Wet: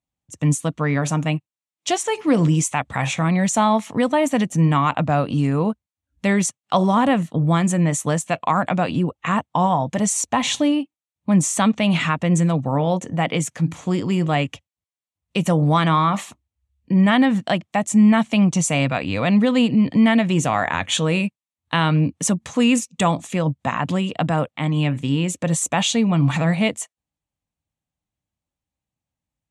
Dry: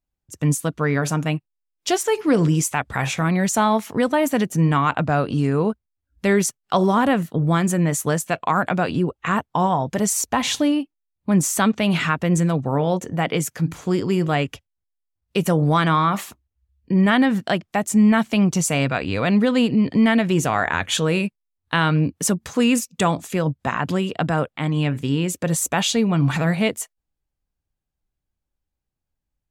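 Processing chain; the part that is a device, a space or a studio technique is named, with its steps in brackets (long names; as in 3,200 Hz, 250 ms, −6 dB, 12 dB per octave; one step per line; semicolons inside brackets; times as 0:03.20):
car door speaker (loudspeaker in its box 90–9,300 Hz, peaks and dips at 400 Hz −9 dB, 1,500 Hz −7 dB, 4,900 Hz −7 dB)
level +2 dB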